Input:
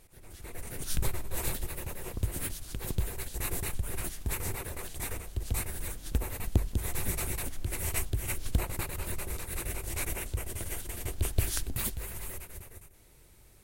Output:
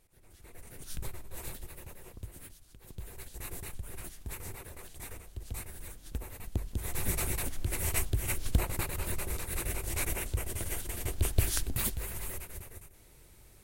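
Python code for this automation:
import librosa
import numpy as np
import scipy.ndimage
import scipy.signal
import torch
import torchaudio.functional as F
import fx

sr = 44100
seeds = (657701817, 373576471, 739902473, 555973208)

y = fx.gain(x, sr, db=fx.line((1.9, -9.0), (2.81, -18.0), (3.16, -8.0), (6.51, -8.0), (7.12, 1.0)))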